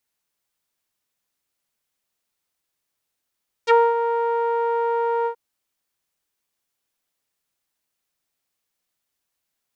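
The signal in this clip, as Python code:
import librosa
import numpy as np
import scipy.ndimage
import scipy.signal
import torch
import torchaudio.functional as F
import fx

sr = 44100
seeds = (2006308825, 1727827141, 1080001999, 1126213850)

y = fx.sub_voice(sr, note=70, wave='saw', cutoff_hz=960.0, q=2.0, env_oct=3.0, env_s=0.05, attack_ms=38.0, decay_s=0.23, sustain_db=-9, release_s=0.09, note_s=1.59, slope=12)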